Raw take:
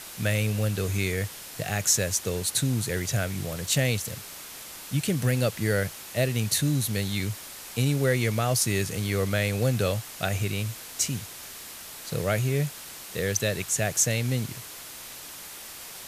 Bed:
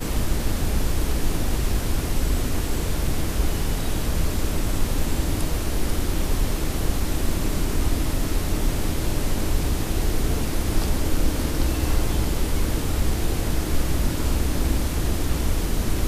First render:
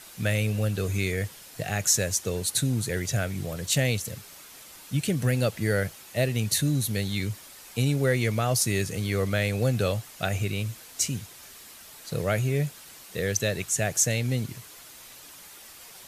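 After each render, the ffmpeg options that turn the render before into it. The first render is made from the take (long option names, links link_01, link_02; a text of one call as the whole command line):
ffmpeg -i in.wav -af "afftdn=noise_reduction=7:noise_floor=-42" out.wav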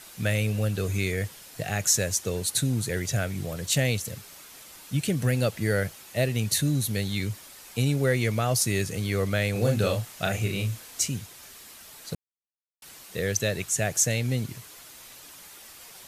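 ffmpeg -i in.wav -filter_complex "[0:a]asettb=1/sr,asplit=3[link_01][link_02][link_03];[link_01]atrim=end=9.524[link_04];[link_02]atrim=start=9.52:end=11.01,asetpts=PTS-STARTPTS,afade=type=in:duration=0.004:curve=qsin,afade=type=out:start_time=1.486:duration=0.004:curve=qsin,asplit=2[link_05][link_06];[link_06]adelay=36,volume=-4dB[link_07];[link_05][link_07]amix=inputs=2:normalize=0,atrim=end_sample=65709[link_08];[link_03]atrim=start=11.006[link_09];[link_04][link_08]acrossfade=duration=0.004:curve1=hsin:curve2=qsin[link_10];[link_10][link_09]acrossfade=duration=0.004:curve1=qsin:curve2=hsin,asplit=3[link_11][link_12][link_13];[link_11]atrim=end=12.15,asetpts=PTS-STARTPTS,afade=type=out:start_time=12.146:duration=0.004:curve=hsin[link_14];[link_12]atrim=start=12.15:end=12.82,asetpts=PTS-STARTPTS,volume=0[link_15];[link_13]atrim=start=12.82,asetpts=PTS-STARTPTS,afade=type=in:duration=0.004:curve=hsin[link_16];[link_14][link_15][link_16]concat=n=3:v=0:a=1" out.wav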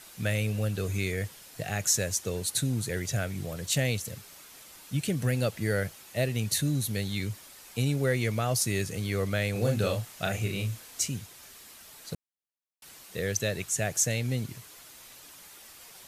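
ffmpeg -i in.wav -af "volume=-3dB" out.wav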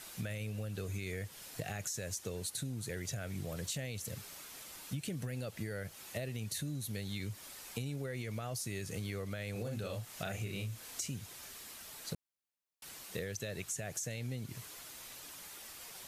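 ffmpeg -i in.wav -af "alimiter=limit=-20dB:level=0:latency=1:release=34,acompressor=threshold=-36dB:ratio=12" out.wav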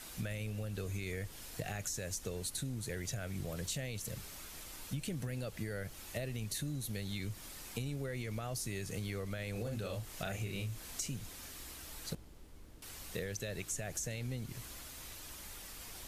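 ffmpeg -i in.wav -i bed.wav -filter_complex "[1:a]volume=-33dB[link_01];[0:a][link_01]amix=inputs=2:normalize=0" out.wav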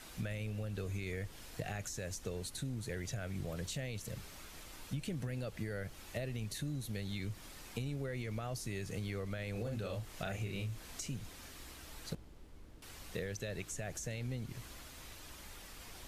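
ffmpeg -i in.wav -af "highshelf=frequency=6100:gain=-8.5" out.wav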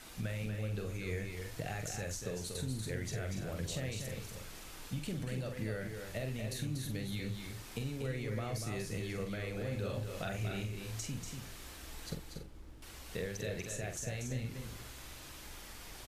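ffmpeg -i in.wav -filter_complex "[0:a]asplit=2[link_01][link_02];[link_02]adelay=46,volume=-7dB[link_03];[link_01][link_03]amix=inputs=2:normalize=0,aecho=1:1:239.1|282.8:0.501|0.282" out.wav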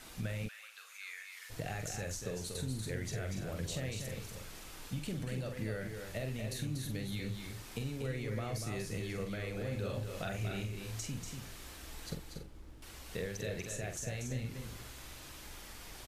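ffmpeg -i in.wav -filter_complex "[0:a]asplit=3[link_01][link_02][link_03];[link_01]afade=type=out:start_time=0.47:duration=0.02[link_04];[link_02]highpass=frequency=1200:width=0.5412,highpass=frequency=1200:width=1.3066,afade=type=in:start_time=0.47:duration=0.02,afade=type=out:start_time=1.49:duration=0.02[link_05];[link_03]afade=type=in:start_time=1.49:duration=0.02[link_06];[link_04][link_05][link_06]amix=inputs=3:normalize=0" out.wav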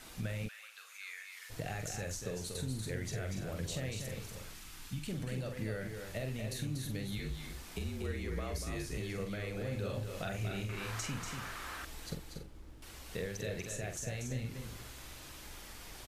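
ffmpeg -i in.wav -filter_complex "[0:a]asettb=1/sr,asplit=3[link_01][link_02][link_03];[link_01]atrim=end=4.534[link_04];[link_02]atrim=start=4.53:end=5.09,asetpts=PTS-STARTPTS,afade=type=in:duration=0.004:curve=qsin,afade=type=out:start_time=0.556:duration=0.004:curve=qsin,equalizer=frequency=540:width_type=o:width=1.2:gain=-12.5[link_05];[link_03]atrim=start=5.086[link_06];[link_04][link_05]acrossfade=duration=0.004:curve1=hsin:curve2=qsin[link_07];[link_07][link_06]acrossfade=duration=0.004:curve1=qsin:curve2=hsin,asettb=1/sr,asplit=3[link_08][link_09][link_10];[link_08]atrim=end=7.184[link_11];[link_09]atrim=start=7.18:end=8.98,asetpts=PTS-STARTPTS,afade=type=in:duration=0.004:curve=qsin,afade=type=out:start_time=1.796:duration=0.004:curve=qsin,afreqshift=-47[link_12];[link_10]atrim=start=8.976[link_13];[link_11][link_12]acrossfade=duration=0.004:curve1=hsin:curve2=qsin[link_14];[link_14][link_13]acrossfade=duration=0.004:curve1=qsin:curve2=hsin,asettb=1/sr,asplit=3[link_15][link_16][link_17];[link_15]atrim=end=10.694[link_18];[link_16]atrim=start=10.69:end=11.85,asetpts=PTS-STARTPTS,afade=type=in:duration=0.004:curve=qsin,afade=type=out:start_time=1.156:duration=0.004:curve=qsin,equalizer=frequency=1300:width_type=o:width=1.7:gain=15[link_19];[link_17]atrim=start=11.846[link_20];[link_18][link_19]acrossfade=duration=0.004:curve1=hsin:curve2=qsin[link_21];[link_21][link_20]acrossfade=duration=0.004:curve1=qsin:curve2=hsin" out.wav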